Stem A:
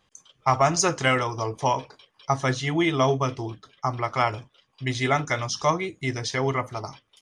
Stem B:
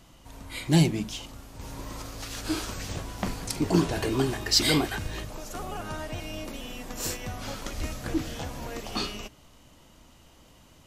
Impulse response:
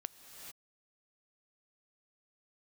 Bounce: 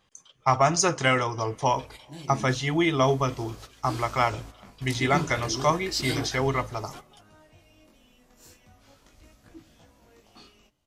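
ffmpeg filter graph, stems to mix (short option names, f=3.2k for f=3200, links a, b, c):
-filter_complex "[0:a]volume=-1dB,asplit=3[a][b][c];[b]volume=-21dB[d];[1:a]flanger=delay=18:depth=5.9:speed=0.36,adelay=1400,volume=-4.5dB[e];[c]apad=whole_len=541093[f];[e][f]sidechaingate=range=-13dB:threshold=-46dB:ratio=16:detection=peak[g];[2:a]atrim=start_sample=2205[h];[d][h]afir=irnorm=-1:irlink=0[i];[a][g][i]amix=inputs=3:normalize=0"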